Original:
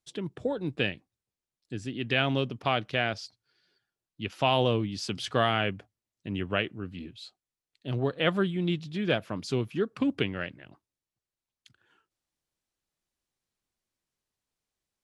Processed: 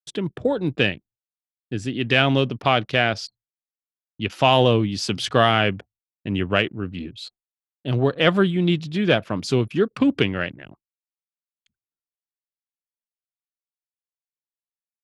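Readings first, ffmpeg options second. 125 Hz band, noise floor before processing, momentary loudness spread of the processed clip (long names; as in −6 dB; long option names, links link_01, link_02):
+8.5 dB, below −85 dBFS, 15 LU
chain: -af "agate=range=-33dB:threshold=-55dB:ratio=3:detection=peak,acontrast=43,anlmdn=0.0158,volume=3dB"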